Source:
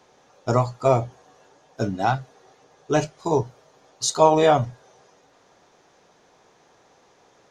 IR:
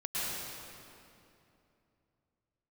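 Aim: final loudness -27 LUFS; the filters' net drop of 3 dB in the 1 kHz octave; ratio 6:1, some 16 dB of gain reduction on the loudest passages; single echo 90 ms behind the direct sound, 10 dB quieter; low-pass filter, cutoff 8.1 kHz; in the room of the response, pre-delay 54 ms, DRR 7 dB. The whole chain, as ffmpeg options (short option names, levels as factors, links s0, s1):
-filter_complex "[0:a]lowpass=8100,equalizer=f=1000:t=o:g=-4,acompressor=threshold=0.0282:ratio=6,aecho=1:1:90:0.316,asplit=2[s0][s1];[1:a]atrim=start_sample=2205,adelay=54[s2];[s1][s2]afir=irnorm=-1:irlink=0,volume=0.211[s3];[s0][s3]amix=inputs=2:normalize=0,volume=2.99"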